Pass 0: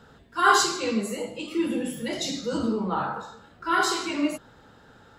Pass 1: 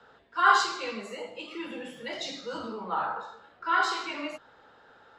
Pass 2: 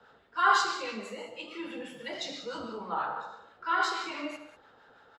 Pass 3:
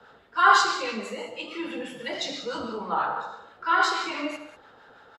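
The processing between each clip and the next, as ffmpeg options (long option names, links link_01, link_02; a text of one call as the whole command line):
ffmpeg -i in.wav -filter_complex "[0:a]highshelf=frequency=4200:gain=-8.5,acrossover=split=270|610|2300[link_01][link_02][link_03][link_04];[link_02]acompressor=threshold=-40dB:ratio=6[link_05];[link_01][link_05][link_03][link_04]amix=inputs=4:normalize=0,acrossover=split=400 6500:gain=0.158 1 0.158[link_06][link_07][link_08];[link_06][link_07][link_08]amix=inputs=3:normalize=0" out.wav
ffmpeg -i in.wav -filter_complex "[0:a]acrossover=split=910[link_01][link_02];[link_01]aeval=exprs='val(0)*(1-0.5/2+0.5/2*cos(2*PI*6.1*n/s))':channel_layout=same[link_03];[link_02]aeval=exprs='val(0)*(1-0.5/2-0.5/2*cos(2*PI*6.1*n/s))':channel_layout=same[link_04];[link_03][link_04]amix=inputs=2:normalize=0,aecho=1:1:80|143|194:0.211|0.15|0.178" out.wav
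ffmpeg -i in.wav -af "aresample=32000,aresample=44100,volume=6dB" out.wav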